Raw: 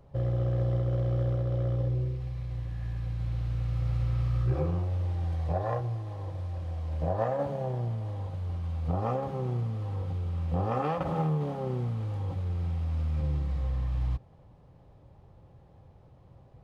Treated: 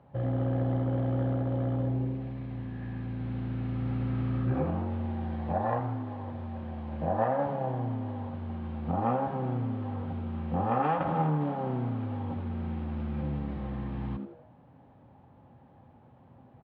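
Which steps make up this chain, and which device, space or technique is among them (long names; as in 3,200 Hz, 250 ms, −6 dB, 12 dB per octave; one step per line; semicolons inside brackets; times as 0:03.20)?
frequency-shifting delay pedal into a guitar cabinet (echo with shifted repeats 81 ms, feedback 40%, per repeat +140 Hz, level −12 dB; loudspeaker in its box 110–3,400 Hz, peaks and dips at 250 Hz +6 dB, 410 Hz −4 dB, 840 Hz +6 dB, 1,600 Hz +5 dB)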